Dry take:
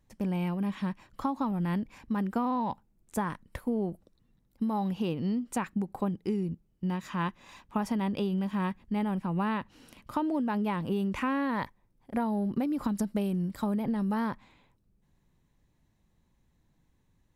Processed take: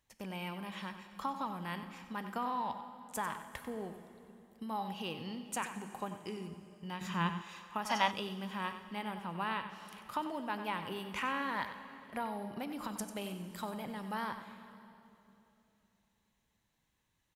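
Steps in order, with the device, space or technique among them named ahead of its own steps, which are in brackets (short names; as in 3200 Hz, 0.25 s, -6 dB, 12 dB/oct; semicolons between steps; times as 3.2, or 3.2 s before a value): PA in a hall (HPF 170 Hz 6 dB/oct; bell 3000 Hz +4 dB 0.25 oct; echo 94 ms -11 dB; reverb RT60 3.1 s, pre-delay 14 ms, DRR 10 dB); bell 230 Hz -12.5 dB 2.9 oct; 7.01–7.42 bell 120 Hz +13 dB 2.8 oct; 7.9–8.11 spectral gain 500–6900 Hz +11 dB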